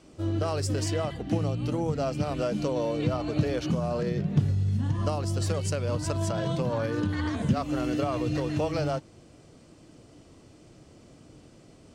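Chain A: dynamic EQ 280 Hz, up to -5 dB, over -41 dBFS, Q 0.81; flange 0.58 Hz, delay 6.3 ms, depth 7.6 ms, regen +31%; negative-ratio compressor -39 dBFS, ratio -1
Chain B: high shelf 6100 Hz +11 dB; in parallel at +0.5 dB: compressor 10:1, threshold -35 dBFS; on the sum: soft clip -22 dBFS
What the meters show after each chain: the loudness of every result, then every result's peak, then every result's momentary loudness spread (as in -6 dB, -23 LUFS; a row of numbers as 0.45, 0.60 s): -39.0, -28.5 LUFS; -23.5, -22.0 dBFS; 14, 18 LU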